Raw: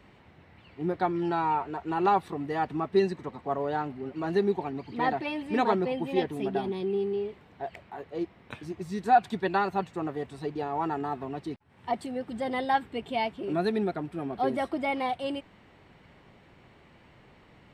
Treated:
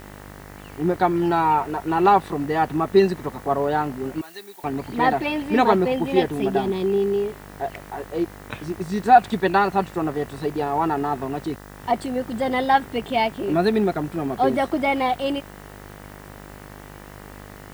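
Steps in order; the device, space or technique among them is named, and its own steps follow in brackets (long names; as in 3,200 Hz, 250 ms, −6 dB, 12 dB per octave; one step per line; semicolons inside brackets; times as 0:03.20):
video cassette with head-switching buzz (hum with harmonics 50 Hz, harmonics 40, −50 dBFS −3 dB per octave; white noise bed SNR 30 dB)
0:04.21–0:04.64: first difference
level +8 dB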